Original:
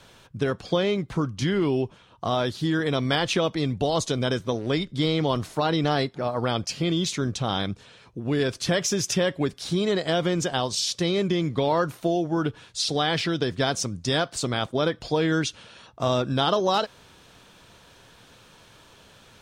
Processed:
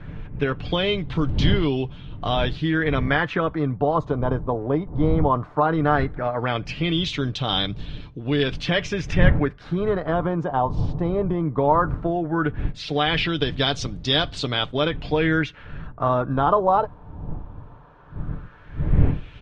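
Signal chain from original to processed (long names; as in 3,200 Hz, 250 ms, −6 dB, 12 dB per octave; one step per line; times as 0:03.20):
wind on the microphone 100 Hz −28 dBFS
auto-filter low-pass sine 0.16 Hz 930–3,600 Hz
comb filter 6.8 ms, depth 36%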